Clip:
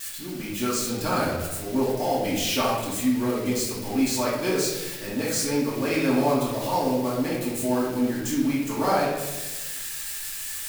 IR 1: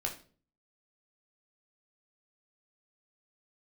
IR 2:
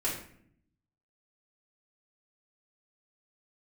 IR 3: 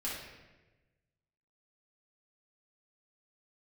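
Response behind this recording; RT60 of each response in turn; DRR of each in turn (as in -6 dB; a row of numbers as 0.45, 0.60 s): 3; 0.40, 0.65, 1.2 s; 0.5, -8.0, -8.0 dB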